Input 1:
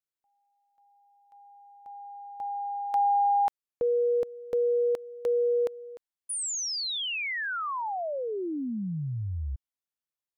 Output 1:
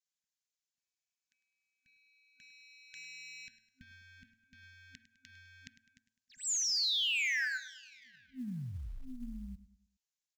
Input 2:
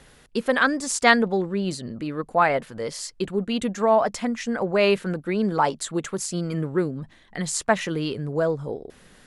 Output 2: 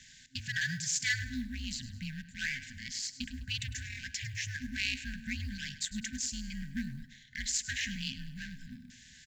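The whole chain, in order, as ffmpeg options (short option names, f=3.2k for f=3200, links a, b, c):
-filter_complex "[0:a]bandreject=f=118.7:t=h:w=4,bandreject=f=237.4:t=h:w=4,bandreject=f=356.1:t=h:w=4,bandreject=f=474.8:t=h:w=4,bandreject=f=593.5:t=h:w=4,bandreject=f=712.2:t=h:w=4,bandreject=f=830.9:t=h:w=4,bandreject=f=949.6:t=h:w=4,bandreject=f=1.0683k:t=h:w=4,bandreject=f=1.187k:t=h:w=4,bandreject=f=1.3057k:t=h:w=4,bandreject=f=1.4244k:t=h:w=4,bandreject=f=1.5431k:t=h:w=4,bandreject=f=1.6618k:t=h:w=4,bandreject=f=1.7805k:t=h:w=4,asplit=2[a][b];[b]adynamicsmooth=sensitivity=8:basefreq=1.2k,volume=2dB[c];[a][c]amix=inputs=2:normalize=0,aemphasis=mode=production:type=riaa,acompressor=threshold=-33dB:ratio=1.5:attack=0.14:release=48:knee=1:detection=rms,aeval=exprs='val(0)*sin(2*PI*130*n/s)':c=same,aresample=16000,asoftclip=type=tanh:threshold=-20.5dB,aresample=44100,afftfilt=real='re*(1-between(b*sr/4096,260,1500))':imag='im*(1-between(b*sr/4096,260,1500))':win_size=4096:overlap=0.75,acrusher=bits=8:mode=log:mix=0:aa=0.000001,aecho=1:1:103|206|309|412:0.178|0.0747|0.0314|0.0132,volume=-1dB"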